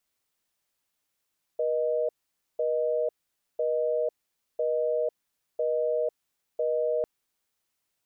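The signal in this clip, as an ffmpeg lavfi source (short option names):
-f lavfi -i "aevalsrc='0.0473*(sin(2*PI*480*t)+sin(2*PI*620*t))*clip(min(mod(t,1),0.5-mod(t,1))/0.005,0,1)':d=5.45:s=44100"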